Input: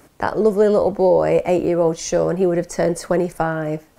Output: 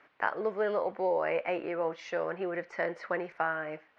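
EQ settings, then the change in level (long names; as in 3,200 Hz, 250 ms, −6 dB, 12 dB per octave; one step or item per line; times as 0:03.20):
resonant band-pass 2,000 Hz, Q 1.3
high-frequency loss of the air 270 metres
0.0 dB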